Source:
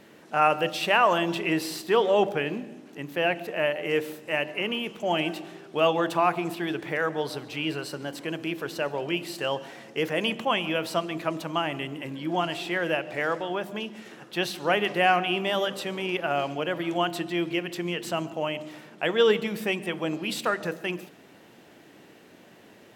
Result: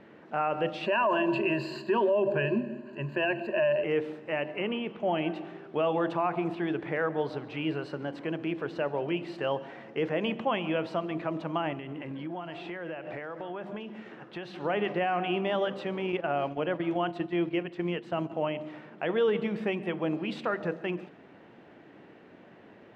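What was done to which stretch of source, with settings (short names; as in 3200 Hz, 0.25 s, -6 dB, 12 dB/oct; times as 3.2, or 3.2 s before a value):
0.86–3.84 ripple EQ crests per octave 1.4, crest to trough 18 dB
4.61–5.35 LPF 4800 Hz
11.73–14.56 compressor, threshold -33 dBFS
16.12–18.3 gate -34 dBFS, range -7 dB
whole clip: LPF 2100 Hz 12 dB/oct; dynamic EQ 1600 Hz, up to -3 dB, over -40 dBFS, Q 0.9; limiter -18.5 dBFS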